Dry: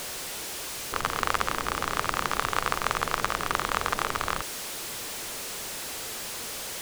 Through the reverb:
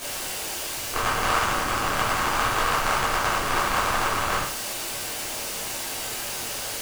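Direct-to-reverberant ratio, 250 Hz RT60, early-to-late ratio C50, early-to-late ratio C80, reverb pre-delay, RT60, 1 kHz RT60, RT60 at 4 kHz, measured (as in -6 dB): -8.5 dB, 0.50 s, 5.5 dB, 11.0 dB, 5 ms, 0.45 s, 0.45 s, 0.40 s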